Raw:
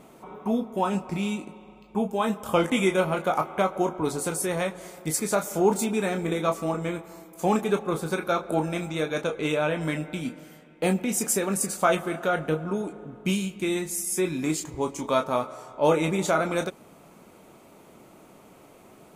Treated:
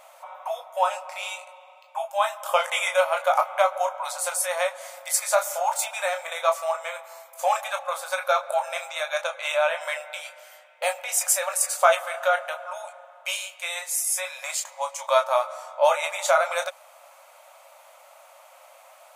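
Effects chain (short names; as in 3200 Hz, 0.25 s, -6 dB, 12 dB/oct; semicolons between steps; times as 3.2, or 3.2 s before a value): brick-wall FIR high-pass 520 Hz; gain +4.5 dB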